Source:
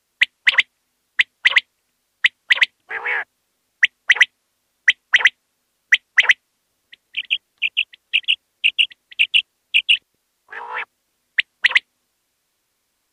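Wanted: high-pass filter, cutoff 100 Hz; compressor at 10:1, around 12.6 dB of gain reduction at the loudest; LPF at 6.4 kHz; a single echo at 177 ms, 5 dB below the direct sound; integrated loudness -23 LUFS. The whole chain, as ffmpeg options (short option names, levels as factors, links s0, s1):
-af "highpass=100,lowpass=6400,acompressor=threshold=0.0794:ratio=10,aecho=1:1:177:0.562,volume=1.58"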